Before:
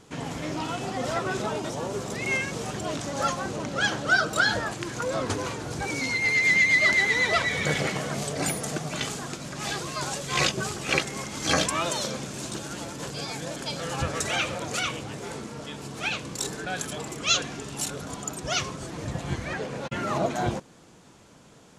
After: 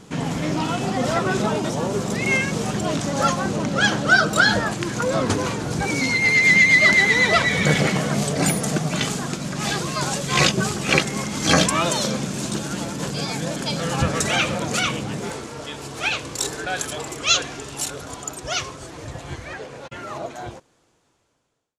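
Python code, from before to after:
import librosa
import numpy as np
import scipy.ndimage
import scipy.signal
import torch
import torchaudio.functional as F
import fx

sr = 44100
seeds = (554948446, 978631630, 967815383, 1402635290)

y = fx.fade_out_tail(x, sr, length_s=5.07)
y = fx.peak_eq(y, sr, hz=190.0, db=fx.steps((0.0, 7.0), (15.3, -9.5)), octaves=0.77)
y = F.gain(torch.from_numpy(y), 6.0).numpy()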